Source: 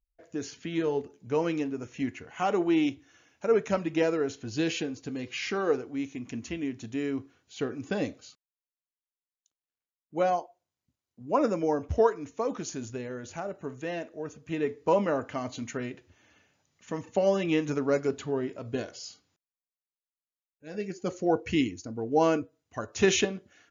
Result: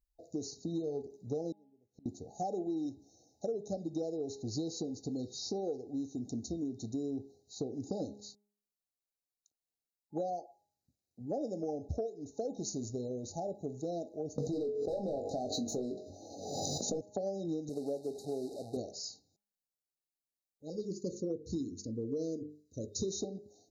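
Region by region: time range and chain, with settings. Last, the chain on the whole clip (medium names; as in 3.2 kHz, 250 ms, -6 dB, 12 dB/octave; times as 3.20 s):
1.52–2.06 s: low-pass 2.1 kHz 6 dB/octave + inverted gate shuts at -36 dBFS, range -33 dB
14.38–17.01 s: overdrive pedal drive 26 dB, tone 1.4 kHz, clips at -11 dBFS + flutter echo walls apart 3.6 m, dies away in 0.21 s + swell ahead of each attack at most 36 dB/s
17.69–18.77 s: one-bit delta coder 64 kbps, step -34.5 dBFS + high-pass 380 Hz 6 dB/octave + treble shelf 3.5 kHz -11 dB
20.70–23.12 s: inverse Chebyshev band-stop 740–1500 Hz + hum notches 50/100/150/200/250/300/350/400/450 Hz
whole clip: FFT band-reject 840–3700 Hz; de-hum 206.1 Hz, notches 17; compression 12:1, threshold -33 dBFS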